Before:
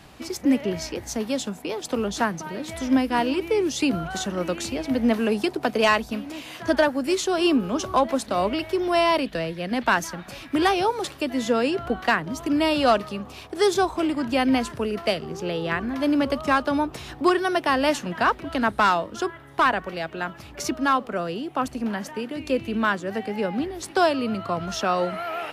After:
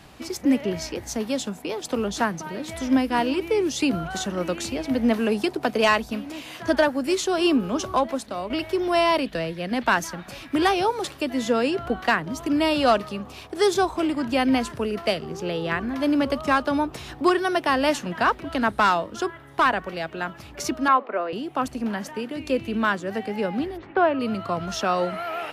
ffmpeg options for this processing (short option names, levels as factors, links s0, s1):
-filter_complex "[0:a]asettb=1/sr,asplit=3[s0][s1][s2];[s0]atrim=end=20.884[s3];[s1]atrim=start=20.88:end=21.33,asetpts=PTS-STARTPTS,afade=t=in:d=0.004:c=qsin,afade=t=out:st=0.446:d=0.004:c=qsin,highpass=f=290:w=0.5412,highpass=f=290:w=1.3066,equalizer=f=620:t=q:w=4:g=3,equalizer=f=1000:t=q:w=4:g=5,equalizer=f=2200:t=q:w=4:g=4,equalizer=f=3200:t=q:w=4:g=-7,lowpass=f=3400:w=0.5412,lowpass=f=3400:w=1.3066[s4];[s2]atrim=start=21.326[s5];[s3][s4]acrossfade=d=0.004:c1=hsin:c2=qsin[s6];[s6][s5]acrossfade=d=0.004:c1=qsin:c2=hsin,asplit=3[s7][s8][s9];[s7]afade=t=out:st=23.76:d=0.02[s10];[s8]lowpass=f=2400:w=0.5412,lowpass=f=2400:w=1.3066,afade=t=in:st=23.76:d=0.02,afade=t=out:st=24.19:d=0.02[s11];[s9]afade=t=in:st=24.19:d=0.02[s12];[s10][s11][s12]amix=inputs=3:normalize=0,asplit=2[s13][s14];[s13]atrim=end=8.5,asetpts=PTS-STARTPTS,afade=t=out:st=7.82:d=0.68:silence=0.316228[s15];[s14]atrim=start=8.5,asetpts=PTS-STARTPTS,afade=t=in:d=0.004:c=hsin:silence=0.316228[s16];[s15][s16]concat=n=2:v=0:a=1"